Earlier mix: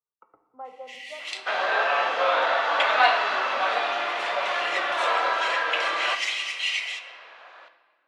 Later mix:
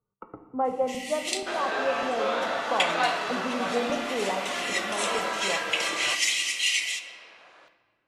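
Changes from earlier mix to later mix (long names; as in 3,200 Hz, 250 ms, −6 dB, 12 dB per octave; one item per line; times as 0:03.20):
speech +11.0 dB
second sound −7.5 dB
master: remove three-way crossover with the lows and the highs turned down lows −17 dB, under 510 Hz, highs −18 dB, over 4,400 Hz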